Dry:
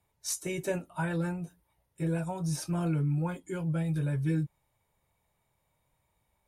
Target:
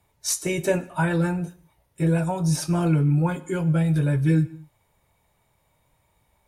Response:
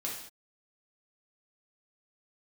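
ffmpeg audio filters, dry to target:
-filter_complex "[0:a]asplit=2[a][b];[1:a]atrim=start_sample=2205,lowpass=8.6k[c];[b][c]afir=irnorm=-1:irlink=0,volume=-14dB[d];[a][d]amix=inputs=2:normalize=0,volume=8dB"

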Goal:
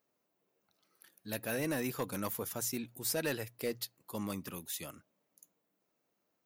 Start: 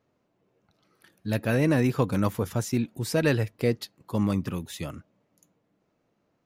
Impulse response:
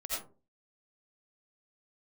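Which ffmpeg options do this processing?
-af "aemphasis=mode=production:type=bsi,asoftclip=type=hard:threshold=-18.5dB,bandreject=f=60:t=h:w=6,bandreject=f=120:t=h:w=6,volume=-8.5dB"

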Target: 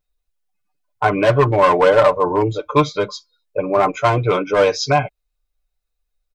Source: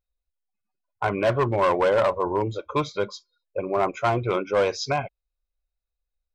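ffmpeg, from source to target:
-af "aecho=1:1:6.7:0.7,volume=6dB"

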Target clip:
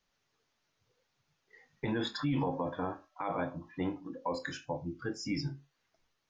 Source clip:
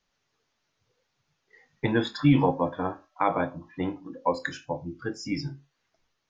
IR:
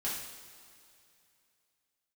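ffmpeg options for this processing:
-af "alimiter=limit=-21.5dB:level=0:latency=1:release=45,volume=-2.5dB"

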